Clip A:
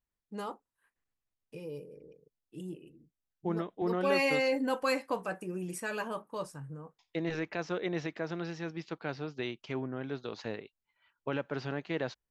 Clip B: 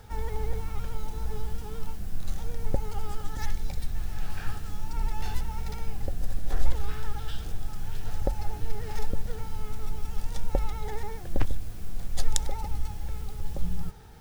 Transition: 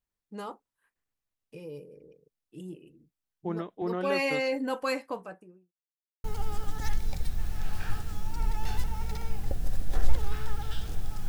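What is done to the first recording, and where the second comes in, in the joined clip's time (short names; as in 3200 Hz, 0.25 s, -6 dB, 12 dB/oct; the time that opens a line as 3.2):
clip A
4.89–5.73 studio fade out
5.73–6.24 mute
6.24 switch to clip B from 2.81 s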